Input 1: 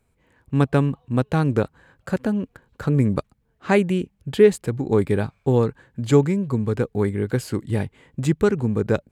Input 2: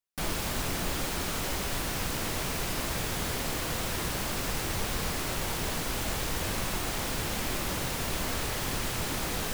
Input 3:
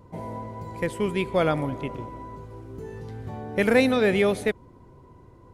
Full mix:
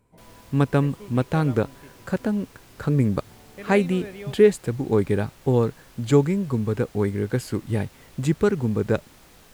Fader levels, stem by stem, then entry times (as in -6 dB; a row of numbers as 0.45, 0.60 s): -1.5, -19.5, -17.0 dB; 0.00, 0.00, 0.00 s